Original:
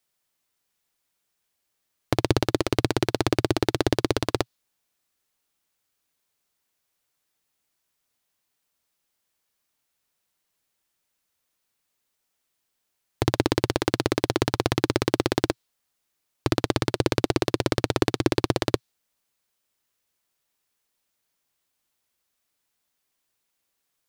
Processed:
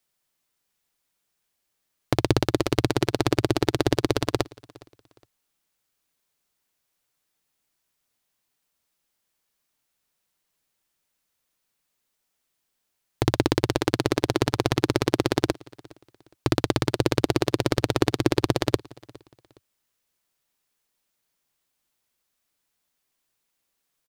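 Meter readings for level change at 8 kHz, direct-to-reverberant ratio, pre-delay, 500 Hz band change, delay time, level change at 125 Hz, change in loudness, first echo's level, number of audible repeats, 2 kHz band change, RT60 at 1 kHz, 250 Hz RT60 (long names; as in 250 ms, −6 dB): 0.0 dB, no reverb audible, no reverb audible, +0.5 dB, 413 ms, +1.5 dB, +0.5 dB, −24.0 dB, 2, 0.0 dB, no reverb audible, no reverb audible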